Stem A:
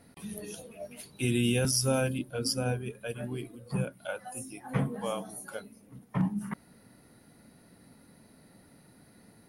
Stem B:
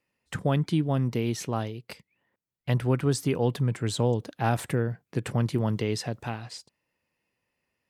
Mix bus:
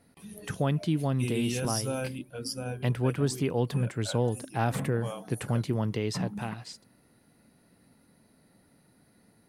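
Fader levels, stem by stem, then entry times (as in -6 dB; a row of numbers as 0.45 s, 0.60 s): -5.0 dB, -2.5 dB; 0.00 s, 0.15 s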